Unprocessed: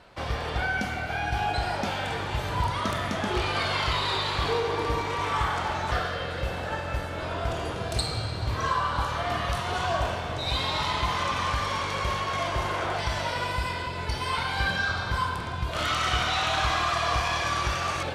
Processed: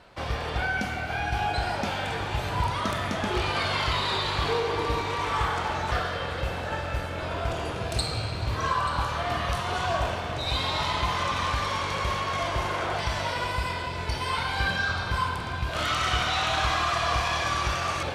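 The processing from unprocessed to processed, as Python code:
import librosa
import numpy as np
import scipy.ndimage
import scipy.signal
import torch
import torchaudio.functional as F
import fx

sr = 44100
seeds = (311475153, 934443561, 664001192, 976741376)

p1 = fx.rattle_buzz(x, sr, strikes_db=-32.0, level_db=-32.0)
y = p1 + fx.echo_single(p1, sr, ms=883, db=-14.0, dry=0)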